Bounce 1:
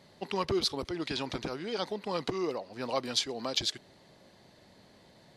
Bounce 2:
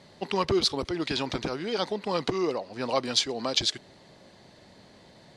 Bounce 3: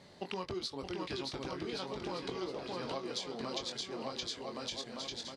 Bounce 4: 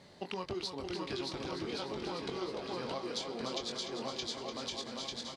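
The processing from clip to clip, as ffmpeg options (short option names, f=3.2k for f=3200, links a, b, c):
-af "lowpass=f=10k:w=0.5412,lowpass=f=10k:w=1.3066,volume=5dB"
-filter_complex "[0:a]asplit=2[a][b];[b]adelay=22,volume=-7dB[c];[a][c]amix=inputs=2:normalize=0,aecho=1:1:620|1116|1513|1830|2084:0.631|0.398|0.251|0.158|0.1,acompressor=threshold=-32dB:ratio=6,volume=-4.5dB"
-af "aecho=1:1:296|592|888|1184|1480|1776:0.398|0.207|0.108|0.056|0.0291|0.0151"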